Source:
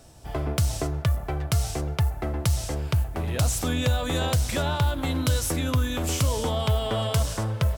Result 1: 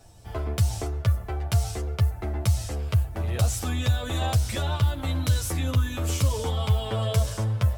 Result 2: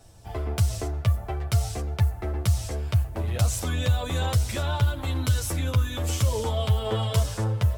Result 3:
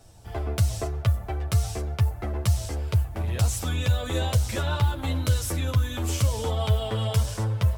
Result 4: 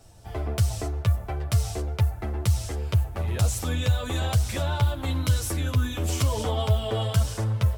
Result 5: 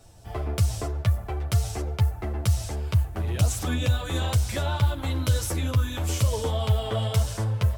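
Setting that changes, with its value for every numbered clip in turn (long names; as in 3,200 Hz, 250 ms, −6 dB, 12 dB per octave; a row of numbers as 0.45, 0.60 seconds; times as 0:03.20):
multi-voice chorus, speed: 0.22, 0.58, 0.88, 1.3, 2.3 Hertz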